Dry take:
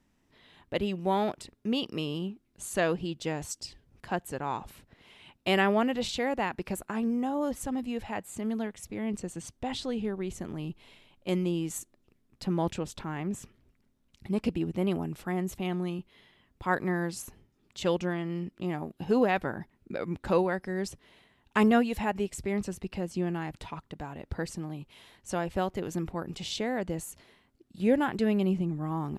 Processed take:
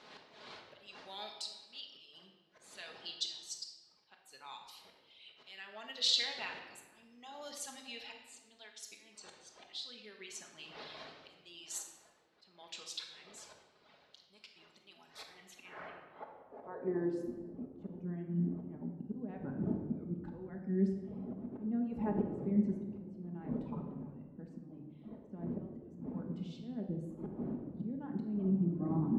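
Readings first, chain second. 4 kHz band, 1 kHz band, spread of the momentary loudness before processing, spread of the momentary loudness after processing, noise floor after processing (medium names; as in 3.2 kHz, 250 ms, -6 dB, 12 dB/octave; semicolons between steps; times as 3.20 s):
-0.5 dB, -17.5 dB, 14 LU, 21 LU, -67 dBFS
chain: wind noise 520 Hz -36 dBFS; reverb removal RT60 1.8 s; compression 8:1, threshold -28 dBFS, peak gain reduction 10 dB; slow attack 588 ms; band-pass sweep 4.2 kHz -> 230 Hz, 15.17–17.33 s; simulated room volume 980 m³, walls mixed, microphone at 1.4 m; trim +8.5 dB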